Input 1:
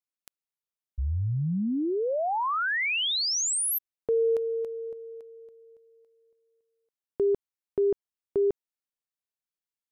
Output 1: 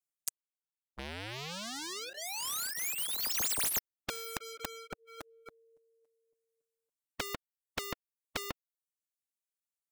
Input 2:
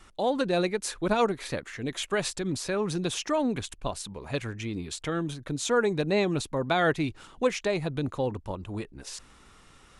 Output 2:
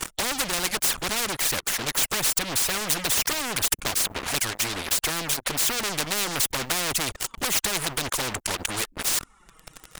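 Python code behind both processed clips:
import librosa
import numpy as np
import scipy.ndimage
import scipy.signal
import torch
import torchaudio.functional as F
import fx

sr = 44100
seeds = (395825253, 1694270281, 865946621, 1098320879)

p1 = fx.dereverb_blind(x, sr, rt60_s=1.2)
p2 = fx.high_shelf_res(p1, sr, hz=5800.0, db=6.0, q=1.5)
p3 = fx.env_flanger(p2, sr, rest_ms=6.9, full_db=-22.0)
p4 = fx.leveller(p3, sr, passes=5)
p5 = 10.0 ** (-24.0 / 20.0) * np.tanh(p4 / 10.0 ** (-24.0 / 20.0))
p6 = p4 + (p5 * 10.0 ** (-5.5 / 20.0))
p7 = fx.spectral_comp(p6, sr, ratio=4.0)
y = p7 * 10.0 ** (4.0 / 20.0)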